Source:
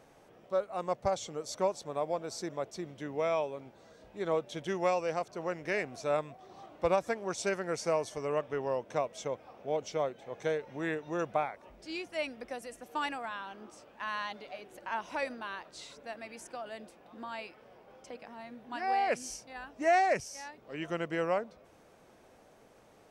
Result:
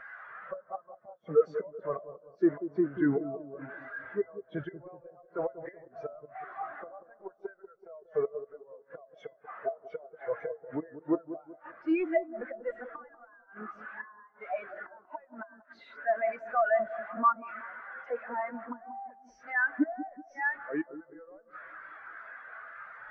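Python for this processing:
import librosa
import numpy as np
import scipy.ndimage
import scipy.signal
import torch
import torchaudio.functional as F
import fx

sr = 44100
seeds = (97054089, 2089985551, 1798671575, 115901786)

p1 = x + 0.5 * 10.0 ** (-27.5 / 20.0) * np.diff(np.sign(x), prepend=np.sign(x[:1]))
p2 = scipy.signal.sosfilt(scipy.signal.butter(4, 86.0, 'highpass', fs=sr, output='sos'), p1)
p3 = fx.peak_eq(p2, sr, hz=1500.0, db=14.5, octaves=1.5)
p4 = fx.gate_flip(p3, sr, shuts_db=-19.0, range_db=-32)
p5 = fx.level_steps(p4, sr, step_db=20)
p6 = p4 + (p5 * 10.0 ** (-0.5 / 20.0))
p7 = fx.comb_fb(p6, sr, f0_hz=660.0, decay_s=0.25, harmonics='odd', damping=0.0, mix_pct=50)
p8 = fx.power_curve(p7, sr, exponent=0.5)
p9 = fx.spacing_loss(p8, sr, db_at_10k=24)
p10 = fx.echo_wet_lowpass(p9, sr, ms=189, feedback_pct=65, hz=1100.0, wet_db=-5.0)
p11 = fx.spectral_expand(p10, sr, expansion=2.5)
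y = p11 * 10.0 ** (6.5 / 20.0)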